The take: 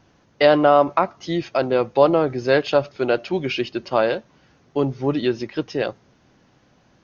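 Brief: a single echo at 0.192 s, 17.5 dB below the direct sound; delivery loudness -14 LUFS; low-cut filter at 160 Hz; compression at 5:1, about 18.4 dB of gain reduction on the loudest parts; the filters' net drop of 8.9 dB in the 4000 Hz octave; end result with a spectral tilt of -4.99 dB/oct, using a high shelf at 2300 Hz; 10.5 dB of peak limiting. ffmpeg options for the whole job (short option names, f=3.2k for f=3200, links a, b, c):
-af "highpass=160,highshelf=f=2.3k:g=-7.5,equalizer=f=4k:t=o:g=-5.5,acompressor=threshold=-32dB:ratio=5,alimiter=level_in=4.5dB:limit=-24dB:level=0:latency=1,volume=-4.5dB,aecho=1:1:192:0.133,volume=25.5dB"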